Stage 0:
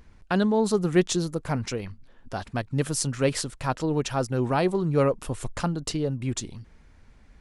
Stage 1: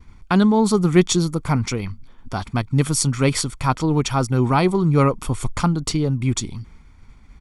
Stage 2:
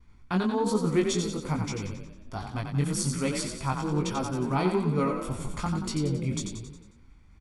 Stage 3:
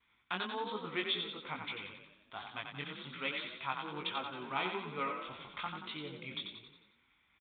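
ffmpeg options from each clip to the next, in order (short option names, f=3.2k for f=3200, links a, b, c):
-af "agate=range=-33dB:threshold=-49dB:ratio=3:detection=peak,aecho=1:1:0.9:0.5,volume=6dB"
-filter_complex "[0:a]flanger=delay=18.5:depth=3.4:speed=1.2,asplit=7[a][b][c][d][e][f][g];[b]adelay=90,afreqshift=30,volume=-6dB[h];[c]adelay=180,afreqshift=60,volume=-11.7dB[i];[d]adelay=270,afreqshift=90,volume=-17.4dB[j];[e]adelay=360,afreqshift=120,volume=-23dB[k];[f]adelay=450,afreqshift=150,volume=-28.7dB[l];[g]adelay=540,afreqshift=180,volume=-34.4dB[m];[a][h][i][j][k][l][m]amix=inputs=7:normalize=0,volume=-7.5dB"
-af "aderivative,aresample=8000,aresample=44100,volume=10.5dB"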